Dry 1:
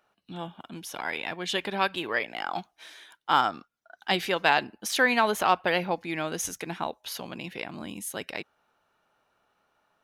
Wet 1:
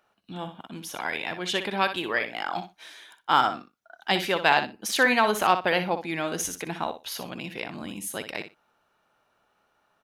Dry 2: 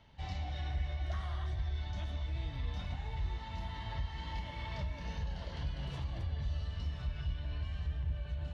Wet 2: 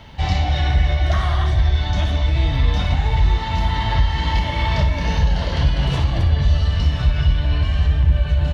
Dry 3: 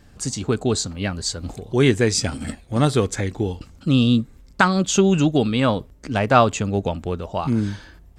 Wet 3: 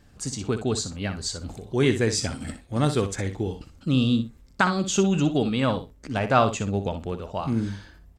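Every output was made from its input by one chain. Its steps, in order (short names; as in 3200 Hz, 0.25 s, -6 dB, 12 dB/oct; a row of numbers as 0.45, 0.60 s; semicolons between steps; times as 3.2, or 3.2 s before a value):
feedback echo 61 ms, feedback 15%, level -10 dB; normalise peaks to -6 dBFS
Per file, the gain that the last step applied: +1.5, +20.5, -5.0 dB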